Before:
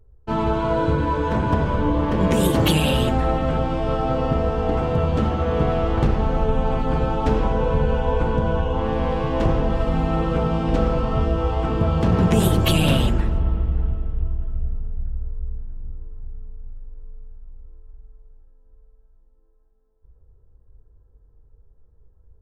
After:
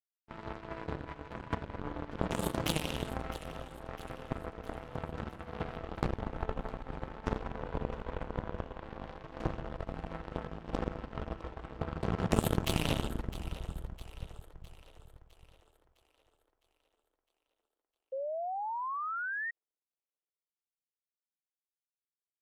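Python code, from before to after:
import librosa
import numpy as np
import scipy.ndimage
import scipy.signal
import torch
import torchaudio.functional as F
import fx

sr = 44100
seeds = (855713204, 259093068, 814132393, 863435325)

y = fx.power_curve(x, sr, exponent=3.0)
y = fx.echo_split(y, sr, split_hz=380.0, low_ms=162, high_ms=658, feedback_pct=52, wet_db=-15)
y = fx.spec_paint(y, sr, seeds[0], shape='rise', start_s=18.12, length_s=1.39, low_hz=520.0, high_hz=1900.0, level_db=-33.0)
y = y * librosa.db_to_amplitude(-3.0)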